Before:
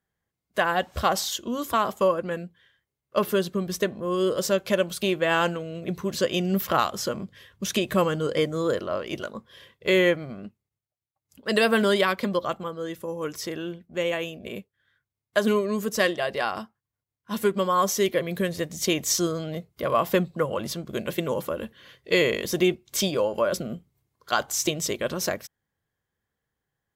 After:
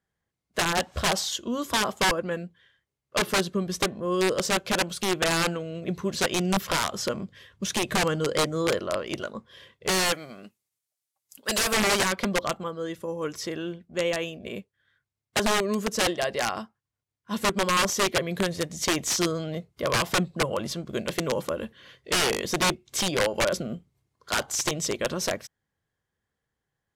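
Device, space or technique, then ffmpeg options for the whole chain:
overflowing digital effects unit: -filter_complex "[0:a]asettb=1/sr,asplit=3[s0][s1][s2];[s0]atrim=end=9.904[s3];[s1]atrim=start=9.9:end=11.74,asetpts=PTS-STARTPTS,afade=t=in:d=0.004:c=qsin,afade=t=out:st=1.836:d=0.004:c=qsin,aemphasis=mode=production:type=riaa[s4];[s2]atrim=start=11.736[s5];[s3][s4]acrossfade=d=0.004:c1=hsin:c2=qsin[s6];[s6][s5]acrossfade=d=0.004:c1=qsin:c2=hsin,aeval=exprs='(mod(6.68*val(0)+1,2)-1)/6.68':c=same,lowpass=9800"

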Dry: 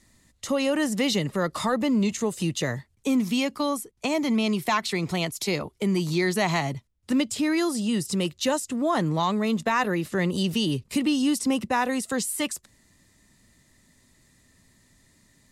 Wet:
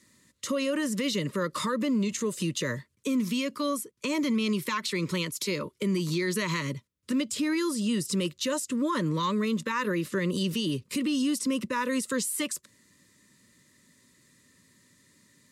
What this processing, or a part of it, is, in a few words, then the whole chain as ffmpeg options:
PA system with an anti-feedback notch: -af "highpass=140,asuperstop=centerf=750:order=12:qfactor=2.4,alimiter=limit=0.0944:level=0:latency=1:release=70"

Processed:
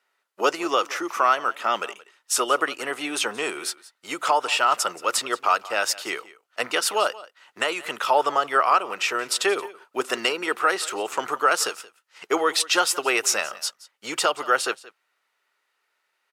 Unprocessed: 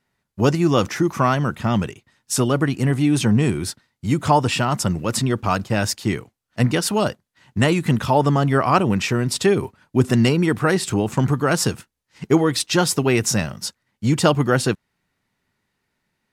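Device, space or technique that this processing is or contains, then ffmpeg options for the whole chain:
laptop speaker: -af "asubboost=boost=7.5:cutoff=80,highpass=f=420:w=0.5412,highpass=f=420:w=1.3066,equalizer=f=1300:t=o:w=0.31:g=8.5,equalizer=f=2800:t=o:w=0.59:g=4,alimiter=limit=0.398:level=0:latency=1:release=459,aecho=1:1:176:0.106"

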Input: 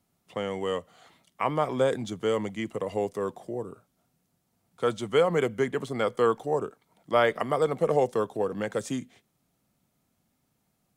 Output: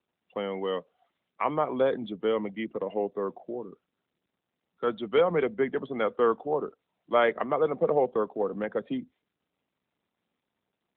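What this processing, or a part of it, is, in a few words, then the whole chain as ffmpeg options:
mobile call with aggressive noise cancelling: -filter_complex "[0:a]asplit=3[s0][s1][s2];[s0]afade=t=out:st=3.57:d=0.02[s3];[s1]equalizer=f=590:t=o:w=0.9:g=-5,afade=t=in:st=3.57:d=0.02,afade=t=out:st=4.86:d=0.02[s4];[s2]afade=t=in:st=4.86:d=0.02[s5];[s3][s4][s5]amix=inputs=3:normalize=0,highpass=f=170:w=0.5412,highpass=f=170:w=1.3066,afftdn=nr=19:nf=-43" -ar 8000 -c:a libopencore_amrnb -b:a 12200

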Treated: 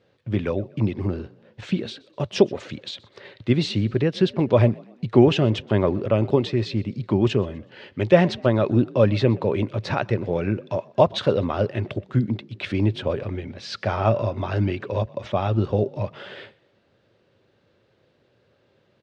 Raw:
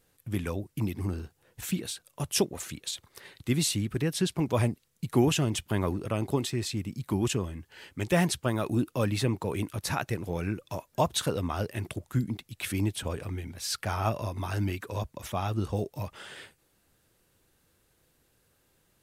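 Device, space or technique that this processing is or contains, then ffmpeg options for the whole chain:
frequency-shifting delay pedal into a guitar cabinet: -filter_complex "[0:a]asplit=4[s0][s1][s2][s3];[s1]adelay=124,afreqshift=44,volume=0.0631[s4];[s2]adelay=248,afreqshift=88,volume=0.0272[s5];[s3]adelay=372,afreqshift=132,volume=0.0116[s6];[s0][s4][s5][s6]amix=inputs=4:normalize=0,highpass=97,equalizer=f=110:t=q:w=4:g=7,equalizer=f=220:t=q:w=4:g=4,equalizer=f=390:t=q:w=4:g=6,equalizer=f=570:t=q:w=4:g=10,lowpass=f=4300:w=0.5412,lowpass=f=4300:w=1.3066,volume=1.68"

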